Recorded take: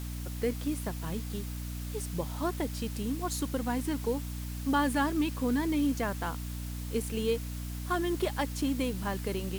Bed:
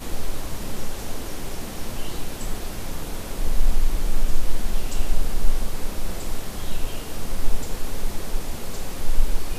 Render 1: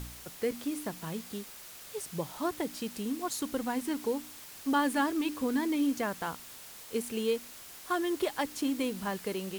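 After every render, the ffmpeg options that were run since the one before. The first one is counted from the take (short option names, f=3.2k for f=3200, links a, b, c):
-af "bandreject=f=60:t=h:w=4,bandreject=f=120:t=h:w=4,bandreject=f=180:t=h:w=4,bandreject=f=240:t=h:w=4,bandreject=f=300:t=h:w=4"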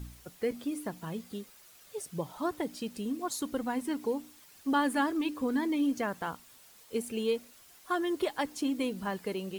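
-af "afftdn=nr=10:nf=-48"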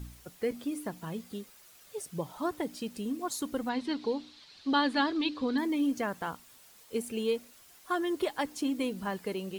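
-filter_complex "[0:a]asettb=1/sr,asplit=3[a][b][c];[a]atrim=end=3.694[d];[b]atrim=start=3.69:end=5.58,asetpts=PTS-STARTPTS,afade=t=in:d=0.004:c=qsin,afade=t=out:st=1.886:d=0.004:c=qsin,lowpass=f=4.1k:t=q:w=4.7[e];[c]atrim=start=5.576[f];[d][e]acrossfade=d=0.004:c1=hsin:c2=qsin[g];[g][f]acrossfade=d=0.004:c1=qsin:c2=hsin"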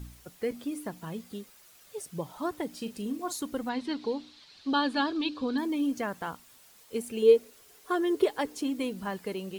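-filter_complex "[0:a]asettb=1/sr,asplit=3[a][b][c];[a]atrim=end=2.684[d];[b]atrim=start=2.68:end=3.36,asetpts=PTS-STARTPTS,afade=t=in:d=0.004:c=qsin,afade=t=out:st=0.676:d=0.004:c=qsin,asplit=2[e][f];[f]adelay=39,volume=-11dB[g];[e][g]amix=inputs=2:normalize=0,atrim=end_sample=29988[h];[c]atrim=start=3.356[i];[d][h]acrossfade=d=0.004:c1=hsin:c2=qsin[j];[j][i]acrossfade=d=0.004:c1=qsin:c2=hsin,asettb=1/sr,asplit=3[k][l][m];[k]atrim=end=4.704[n];[l]atrim=start=4.7:end=5.92,asetpts=PTS-STARTPTS,afade=t=in:d=0.004:c=qsin,afade=t=out:st=1.216:d=0.004:c=qsin,bandreject=f=2k:w=6[o];[m]atrim=start=5.916[p];[n][o]acrossfade=d=0.004:c1=hsin:c2=qsin[q];[q][p]acrossfade=d=0.004:c1=qsin:c2=hsin,asettb=1/sr,asplit=3[r][s][t];[r]atrim=end=7.224[u];[s]atrim=start=7.22:end=8.62,asetpts=PTS-STARTPTS,afade=t=in:d=0.004:c=qsin,afade=t=out:st=1.396:d=0.004:c=qsin,equalizer=f=430:w=4.2:g=15[v];[t]atrim=start=8.616[w];[u][v]acrossfade=d=0.004:c1=hsin:c2=qsin[x];[x][w]acrossfade=d=0.004:c1=qsin:c2=hsin"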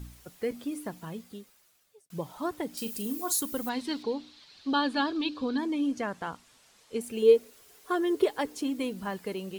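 -filter_complex "[0:a]asettb=1/sr,asplit=3[a][b][c];[a]atrim=end=2.774[d];[b]atrim=start=2.77:end=4.03,asetpts=PTS-STARTPTS,afade=t=in:d=0.004:c=qsin,afade=t=out:st=1.256:d=0.004:c=qsin,aemphasis=mode=production:type=50fm[e];[c]atrim=start=4.026[f];[d][e]acrossfade=d=0.004:c1=hsin:c2=qsin[g];[g][f]acrossfade=d=0.004:c1=qsin:c2=hsin,asettb=1/sr,asplit=3[h][i][j];[h]atrim=end=5.484[k];[i]atrim=start=5.48:end=7.01,asetpts=PTS-STARTPTS,afade=t=in:d=0.004:c=qsin,afade=t=out:st=1.526:d=0.004:c=qsin,lowpass=7.9k[l];[j]atrim=start=7.006[m];[k][l]acrossfade=d=0.004:c1=hsin:c2=qsin[n];[n][m]acrossfade=d=0.004:c1=qsin:c2=hsin,asplit=2[o][p];[o]atrim=end=2.1,asetpts=PTS-STARTPTS,afade=t=out:st=0.95:d=1.15[q];[p]atrim=start=2.1,asetpts=PTS-STARTPTS,afade=t=in:d=0.004:c=hsin[r];[q][r]concat=n=2:v=0:a=1"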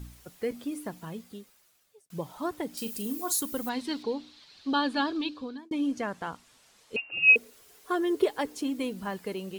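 -filter_complex "[0:a]asettb=1/sr,asplit=3[a][b][c];[a]atrim=end=6.964[d];[b]atrim=start=6.96:end=7.36,asetpts=PTS-STARTPTS,afade=t=in:d=0.004:c=qsin,afade=t=out:st=0.396:d=0.004:c=qsin,lowpass=f=2.6k:t=q:w=0.5098,lowpass=f=2.6k:t=q:w=0.6013,lowpass=f=2.6k:t=q:w=0.9,lowpass=f=2.6k:t=q:w=2.563,afreqshift=-3000[e];[c]atrim=start=7.356[f];[d][e]acrossfade=d=0.004:c1=hsin:c2=qsin[g];[g][f]acrossfade=d=0.004:c1=qsin:c2=hsin,asplit=2[h][i];[h]atrim=end=5.71,asetpts=PTS-STARTPTS,afade=t=out:st=5.16:d=0.55[j];[i]atrim=start=5.71,asetpts=PTS-STARTPTS,afade=t=in:d=0.004:c=hsin[k];[j][k]concat=n=2:v=0:a=1"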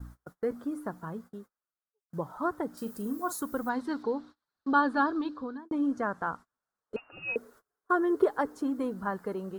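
-af "agate=range=-28dB:threshold=-47dB:ratio=16:detection=peak,highshelf=f=1.9k:t=q:w=3:g=-10.5"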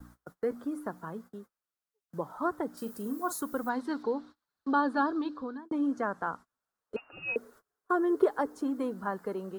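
-filter_complex "[0:a]acrossover=split=180|1100|4000[a][b][c][d];[a]acompressor=threshold=-55dB:ratio=6[e];[c]alimiter=level_in=4dB:limit=-24dB:level=0:latency=1:release=327,volume=-4dB[f];[e][b][f][d]amix=inputs=4:normalize=0"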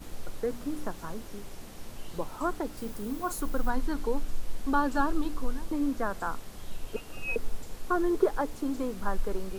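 -filter_complex "[1:a]volume=-13dB[a];[0:a][a]amix=inputs=2:normalize=0"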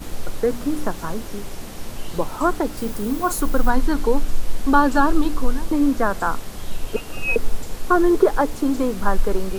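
-af "volume=11dB,alimiter=limit=-3dB:level=0:latency=1"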